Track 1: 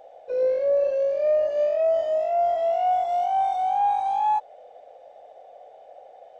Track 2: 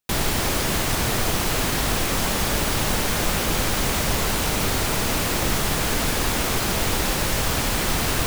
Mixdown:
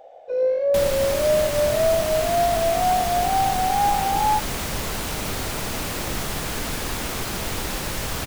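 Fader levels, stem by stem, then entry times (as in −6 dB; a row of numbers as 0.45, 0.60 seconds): +1.5, −5.0 decibels; 0.00, 0.65 seconds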